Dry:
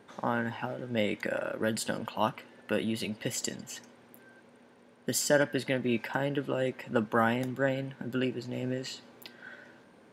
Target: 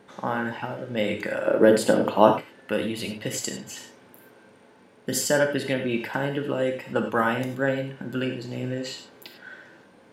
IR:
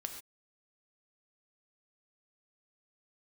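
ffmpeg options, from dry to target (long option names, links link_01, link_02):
-filter_complex "[0:a]asettb=1/sr,asplit=3[link_01][link_02][link_03];[link_01]atrim=end=1.464[link_04];[link_02]atrim=start=1.46:end=2.36,asetpts=PTS-STARTPTS,afade=type=in:duration=0.004:curve=qsin,afade=type=out:start_time=0.896:duration=0.004:curve=qsin,equalizer=frequency=420:width=0.54:gain=13.5[link_05];[link_03]atrim=start=2.356[link_06];[link_04][link_05]acrossfade=duration=0.004:curve1=hsin:curve2=qsin[link_07];[link_07][link_06]acrossfade=duration=0.004:curve1=qsin:curve2=hsin,asettb=1/sr,asplit=3[link_08][link_09][link_10];[link_08]atrim=end=3.734[link_11];[link_09]atrim=start=3.73:end=5.16,asetpts=PTS-STARTPTS,afade=type=in:duration=0.004:curve=qsin,afade=type=out:start_time=1.426:duration=0.004:curve=qsin,asplit=2[link_12][link_13];[link_13]adelay=42,volume=-7dB[link_14];[link_12][link_14]amix=inputs=2:normalize=0,atrim=end_sample=63063[link_15];[link_10]atrim=start=5.156[link_16];[link_11][link_15]acrossfade=duration=0.004:curve1=hsin:curve2=qsin[link_17];[link_17][link_16]acrossfade=duration=0.004:curve1=qsin:curve2=hsin[link_18];[1:a]atrim=start_sample=2205,asetrate=57330,aresample=44100[link_19];[link_18][link_19]afir=irnorm=-1:irlink=0,volume=8dB"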